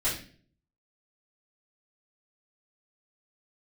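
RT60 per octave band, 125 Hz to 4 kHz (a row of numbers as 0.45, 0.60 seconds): 0.75, 0.65, 0.55, 0.35, 0.45, 0.40 seconds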